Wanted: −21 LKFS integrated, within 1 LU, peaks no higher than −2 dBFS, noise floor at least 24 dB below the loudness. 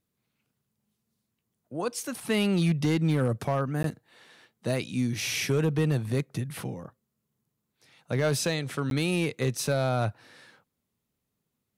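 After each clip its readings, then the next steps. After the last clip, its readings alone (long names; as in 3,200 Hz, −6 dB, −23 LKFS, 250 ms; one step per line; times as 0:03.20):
share of clipped samples 0.5%; peaks flattened at −18.5 dBFS; number of dropouts 2; longest dropout 12 ms; integrated loudness −28.0 LKFS; sample peak −18.5 dBFS; target loudness −21.0 LKFS
→ clipped peaks rebuilt −18.5 dBFS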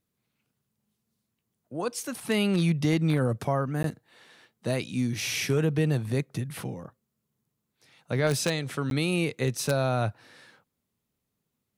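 share of clipped samples 0.0%; number of dropouts 2; longest dropout 12 ms
→ repair the gap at 0:03.83/0:08.90, 12 ms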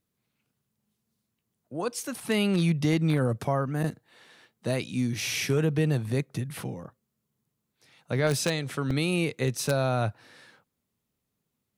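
number of dropouts 0; integrated loudness −28.0 LKFS; sample peak −9.5 dBFS; target loudness −21.0 LKFS
→ level +7 dB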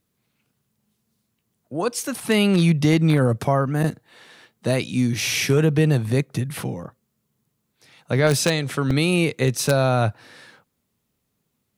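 integrated loudness −21.0 LKFS; sample peak −2.5 dBFS; background noise floor −75 dBFS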